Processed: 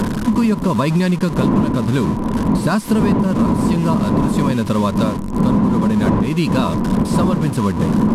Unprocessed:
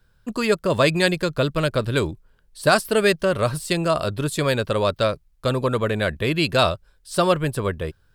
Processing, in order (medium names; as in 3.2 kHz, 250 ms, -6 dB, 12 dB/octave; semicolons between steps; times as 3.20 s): one-bit delta coder 64 kbps, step -23.5 dBFS; wind noise 470 Hz -20 dBFS; bass shelf 230 Hz +3.5 dB; small resonant body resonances 210/990 Hz, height 17 dB, ringing for 40 ms; in parallel at +3 dB: peak limiter -1 dBFS, peak gain reduction 11 dB; on the sum: compression, threshold -4 dBFS, peak gain reduction 11.5 dB; trim -8 dB